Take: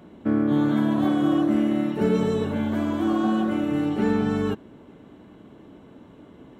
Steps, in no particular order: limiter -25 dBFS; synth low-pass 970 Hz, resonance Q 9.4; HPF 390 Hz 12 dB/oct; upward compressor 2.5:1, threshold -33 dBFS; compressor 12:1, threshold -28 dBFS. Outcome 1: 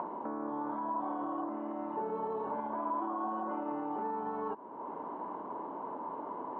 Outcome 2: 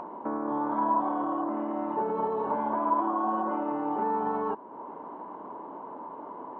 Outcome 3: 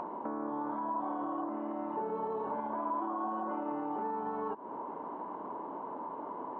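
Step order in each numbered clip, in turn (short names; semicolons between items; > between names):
upward compressor > compressor > synth low-pass > limiter > HPF; HPF > limiter > compressor > synth low-pass > upward compressor; compressor > synth low-pass > limiter > HPF > upward compressor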